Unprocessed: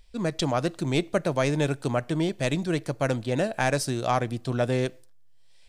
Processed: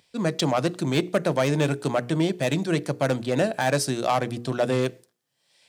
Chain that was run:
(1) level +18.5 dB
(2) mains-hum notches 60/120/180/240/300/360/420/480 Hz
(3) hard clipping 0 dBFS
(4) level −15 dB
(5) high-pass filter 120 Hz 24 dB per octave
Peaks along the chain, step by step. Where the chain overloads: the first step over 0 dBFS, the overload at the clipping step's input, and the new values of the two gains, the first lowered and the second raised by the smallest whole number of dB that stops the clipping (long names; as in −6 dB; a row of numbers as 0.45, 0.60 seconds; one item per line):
+9.0, +9.5, 0.0, −15.0, −8.5 dBFS
step 1, 9.5 dB
step 1 +8.5 dB, step 4 −5 dB